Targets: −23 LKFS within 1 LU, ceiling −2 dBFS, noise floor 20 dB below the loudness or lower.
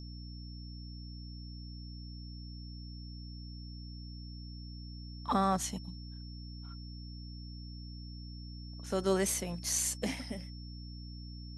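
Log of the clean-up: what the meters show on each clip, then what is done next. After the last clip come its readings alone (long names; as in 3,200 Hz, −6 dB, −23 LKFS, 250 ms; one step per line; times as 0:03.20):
mains hum 60 Hz; hum harmonics up to 300 Hz; level of the hum −43 dBFS; interfering tone 5,400 Hz; level of the tone −53 dBFS; integrated loudness −39.0 LKFS; sample peak −17.0 dBFS; target loudness −23.0 LKFS
→ mains-hum notches 60/120/180/240/300 Hz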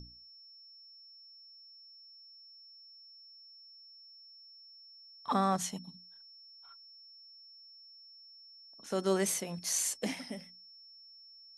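mains hum none found; interfering tone 5,400 Hz; level of the tone −53 dBFS
→ notch filter 5,400 Hz, Q 30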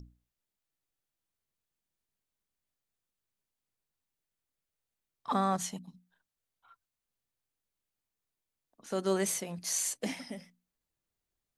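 interfering tone none found; integrated loudness −33.0 LKFS; sample peak −16.5 dBFS; target loudness −23.0 LKFS
→ level +10 dB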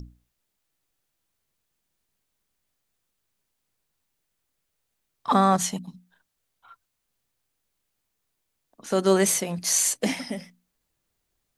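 integrated loudness −23.0 LKFS; sample peak −6.5 dBFS; background noise floor −79 dBFS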